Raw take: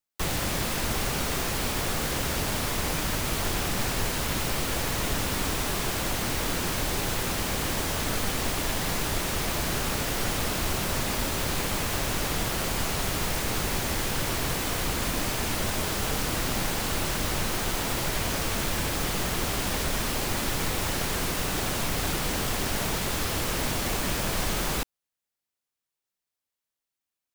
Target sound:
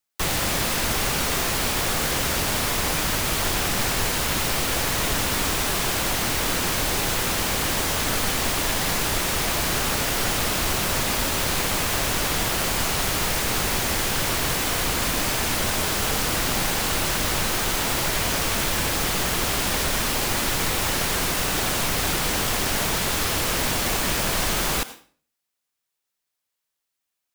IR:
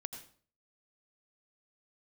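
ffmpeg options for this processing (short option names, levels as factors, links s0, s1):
-filter_complex "[0:a]asplit=2[s0][s1];[s1]highpass=f=750:p=1[s2];[1:a]atrim=start_sample=2205[s3];[s2][s3]afir=irnorm=-1:irlink=0,volume=1[s4];[s0][s4]amix=inputs=2:normalize=0,volume=1.19"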